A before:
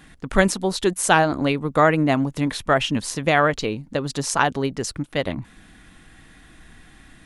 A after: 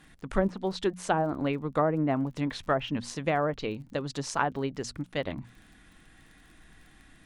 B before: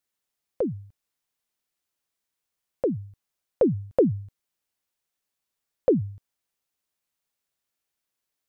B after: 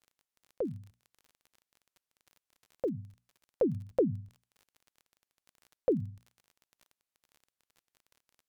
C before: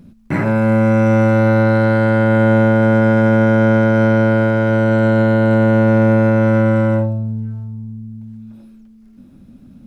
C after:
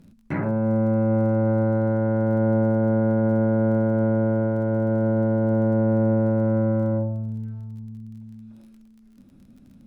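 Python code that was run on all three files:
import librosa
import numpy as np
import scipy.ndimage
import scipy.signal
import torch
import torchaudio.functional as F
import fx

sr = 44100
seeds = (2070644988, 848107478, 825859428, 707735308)

y = fx.hum_notches(x, sr, base_hz=60, count=4)
y = fx.env_lowpass_down(y, sr, base_hz=800.0, full_db=-12.0)
y = fx.dmg_crackle(y, sr, seeds[0], per_s=29.0, level_db=-38.0)
y = y * librosa.db_to_amplitude(-7.5)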